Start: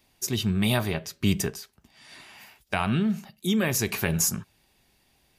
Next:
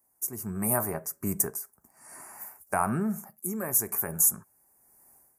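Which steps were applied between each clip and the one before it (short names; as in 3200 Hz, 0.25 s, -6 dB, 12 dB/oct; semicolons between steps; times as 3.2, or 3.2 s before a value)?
Chebyshev band-stop 1100–9400 Hz, order 2; tilt +3 dB/oct; AGC gain up to 15 dB; gain -8 dB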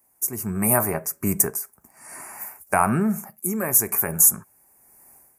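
bell 2400 Hz +6.5 dB 0.58 oct; gain +7 dB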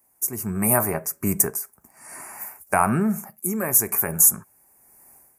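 nothing audible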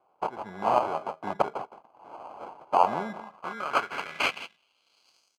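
echo 0.165 s -14.5 dB; sample-and-hold 24×; band-pass sweep 840 Hz -> 5900 Hz, 3.12–5.36; gain +2.5 dB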